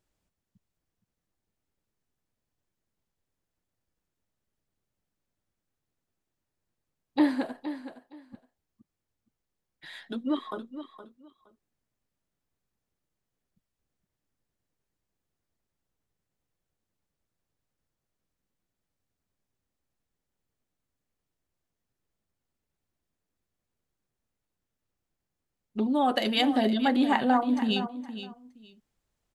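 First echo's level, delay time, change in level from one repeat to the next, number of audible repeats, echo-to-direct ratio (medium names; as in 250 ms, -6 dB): -12.0 dB, 467 ms, -14.5 dB, 2, -12.0 dB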